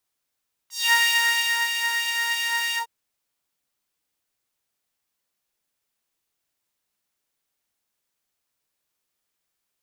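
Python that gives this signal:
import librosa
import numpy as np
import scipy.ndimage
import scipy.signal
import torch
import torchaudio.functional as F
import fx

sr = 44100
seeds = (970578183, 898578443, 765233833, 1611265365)

y = fx.sub_patch_wobble(sr, seeds[0], note=82, wave='saw', wave2='saw', interval_st=0, level2_db=-9.0, sub_db=-15.0, noise_db=-15, kind='highpass', cutoff_hz=690.0, q=2.1, env_oct=3.0, env_decay_s=0.21, env_sustain_pct=50, attack_ms=200.0, decay_s=0.78, sustain_db=-6.5, release_s=0.1, note_s=2.06, lfo_hz=3.1, wobble_oct=0.3)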